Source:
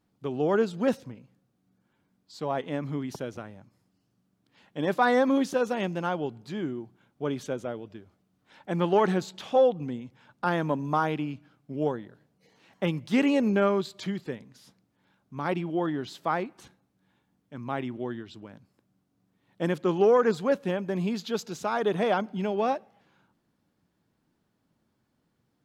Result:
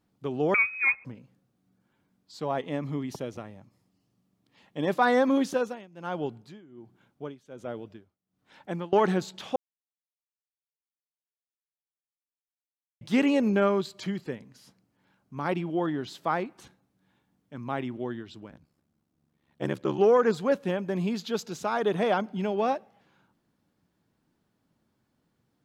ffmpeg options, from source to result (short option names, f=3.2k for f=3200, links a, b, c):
-filter_complex "[0:a]asettb=1/sr,asplit=3[a][b][c];[a]atrim=end=0.544[d];[b]atrim=start=0.54:end=1.05,asetpts=PTS-STARTPTS,afade=t=in:d=0.004:c=qsin,afade=t=out:st=0.506:d=0.004:c=qsin,lowpass=f=2.3k:t=q:w=0.5098,lowpass=f=2.3k:t=q:w=0.6013,lowpass=f=2.3k:t=q:w=0.9,lowpass=f=2.3k:t=q:w=2.563,afreqshift=-2700[e];[c]atrim=start=1.046[f];[d][e]acrossfade=d=0.004:c1=hsin:c2=qsin[g];[g][f]acrossfade=d=0.004:c1=qsin:c2=hsin,asettb=1/sr,asplit=3[h][i][j];[h]atrim=end=2.584[k];[i]atrim=start=2.58:end=4.96,asetpts=PTS-STARTPTS,afade=t=in:d=0.004:c=qsin,afade=t=out:st=2.376:d=0.004:c=qsin,bandreject=f=1.5k:w=7.3[l];[j]atrim=start=4.956[m];[k][l]acrossfade=d=0.004:c1=hsin:c2=qsin[n];[n][m]acrossfade=d=0.004:c1=qsin:c2=hsin,asettb=1/sr,asplit=3[o][p][q];[o]atrim=end=5.504[r];[p]atrim=start=5.5:end=8.93,asetpts=PTS-STARTPTS,afade=t=in:d=0.004:c=qsin,afade=t=out:st=3.426:d=0.004:c=qsin,tremolo=f=1.3:d=0.93[s];[q]atrim=start=8.926[t];[r][s]acrossfade=d=0.004:c1=hsin:c2=qsin[u];[u][t]acrossfade=d=0.004:c1=qsin:c2=hsin,asettb=1/sr,asplit=3[v][w][x];[v]atrim=end=13.864[y];[w]atrim=start=13.86:end=15.49,asetpts=PTS-STARTPTS,afade=t=in:d=0.004:c=qsin,afade=t=out:st=1.626:d=0.004:c=qsin,bandreject=f=3.6k:w=12[z];[x]atrim=start=15.486[aa];[y][z]acrossfade=d=0.004:c1=hsin:c2=qsin[ab];[ab][aa]acrossfade=d=0.004:c1=qsin:c2=hsin,asettb=1/sr,asplit=3[ac][ad][ae];[ac]atrim=end=18.494[af];[ad]atrim=start=18.49:end=19.99,asetpts=PTS-STARTPTS,afade=t=in:d=0.004:c=qsin,afade=t=out:st=1.496:d=0.004:c=qsin,aeval=exprs='val(0)*sin(2*PI*35*n/s)':c=same[ag];[ae]atrim=start=19.986[ah];[af][ag]acrossfade=d=0.004:c1=hsin:c2=qsin[ai];[ai][ah]acrossfade=d=0.004:c1=qsin:c2=hsin,asplit=3[aj][ak][al];[aj]atrim=end=9.56,asetpts=PTS-STARTPTS,afade=t=out:st=9.556:d=0.004:c=hsin[am];[ak]atrim=start=9.56:end=13.01,asetpts=PTS-STARTPTS,volume=0[an];[al]atrim=start=13.01,asetpts=PTS-STARTPTS,afade=t=in:d=0.004:c=hsin[ao];[am][an][ao]concat=n=3:v=0:a=1"